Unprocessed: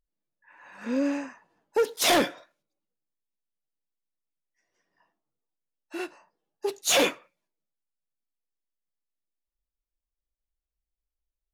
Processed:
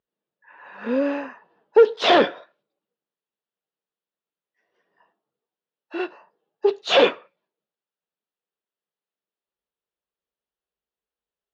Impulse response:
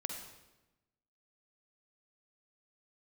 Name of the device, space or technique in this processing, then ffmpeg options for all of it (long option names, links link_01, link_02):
kitchen radio: -af "highpass=190,equalizer=frequency=290:width_type=q:width=4:gain=-6,equalizer=frequency=430:width_type=q:width=4:gain=6,equalizer=frequency=2200:width_type=q:width=4:gain=-7,lowpass=frequency=3600:width=0.5412,lowpass=frequency=3600:width=1.3066,volume=7dB"